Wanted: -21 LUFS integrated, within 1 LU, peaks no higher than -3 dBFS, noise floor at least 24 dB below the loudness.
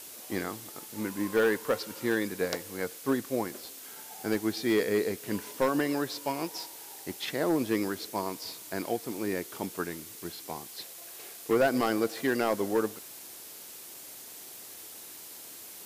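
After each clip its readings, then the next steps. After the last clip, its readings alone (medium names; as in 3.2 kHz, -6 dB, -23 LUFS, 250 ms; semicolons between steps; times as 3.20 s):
clipped samples 0.3%; clipping level -18.5 dBFS; noise floor -46 dBFS; noise floor target -56 dBFS; loudness -31.5 LUFS; peak level -18.5 dBFS; loudness target -21.0 LUFS
-> clip repair -18.5 dBFS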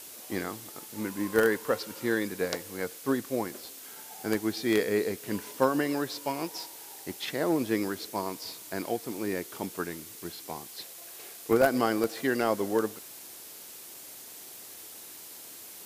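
clipped samples 0.0%; noise floor -46 dBFS; noise floor target -55 dBFS
-> noise print and reduce 9 dB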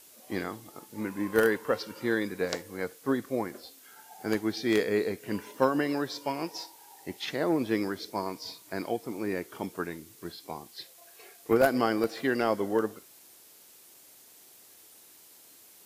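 noise floor -55 dBFS; loudness -30.5 LUFS; peak level -9.5 dBFS; loudness target -21.0 LUFS
-> trim +9.5 dB; peak limiter -3 dBFS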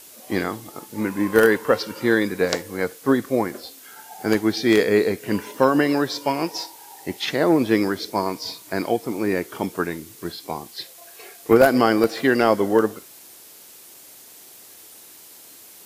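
loudness -21.5 LUFS; peak level -3.0 dBFS; noise floor -46 dBFS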